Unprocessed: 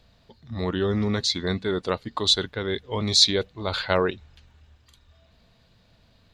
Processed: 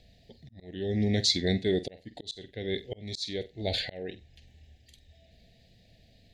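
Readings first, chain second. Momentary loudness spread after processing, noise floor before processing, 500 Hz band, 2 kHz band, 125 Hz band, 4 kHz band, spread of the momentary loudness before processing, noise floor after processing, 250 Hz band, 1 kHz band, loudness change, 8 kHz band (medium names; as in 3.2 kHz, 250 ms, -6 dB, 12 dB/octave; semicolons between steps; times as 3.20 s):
17 LU, -60 dBFS, -6.5 dB, -8.5 dB, -4.0 dB, -9.5 dB, 12 LU, -61 dBFS, -4.0 dB, -16.5 dB, -7.0 dB, -9.0 dB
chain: elliptic band-stop 750–1800 Hz, stop band 50 dB; wow and flutter 16 cents; flutter echo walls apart 8.1 m, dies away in 0.2 s; slow attack 603 ms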